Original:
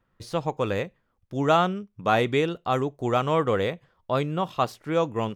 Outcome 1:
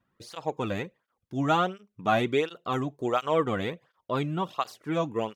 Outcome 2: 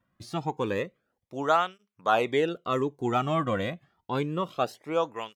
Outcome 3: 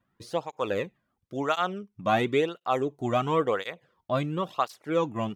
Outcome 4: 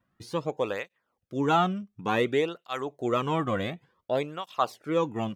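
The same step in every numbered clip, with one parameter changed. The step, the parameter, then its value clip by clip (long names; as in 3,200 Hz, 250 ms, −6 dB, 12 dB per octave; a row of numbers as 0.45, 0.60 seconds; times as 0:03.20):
through-zero flanger with one copy inverted, nulls at: 1.4, 0.28, 0.96, 0.56 Hertz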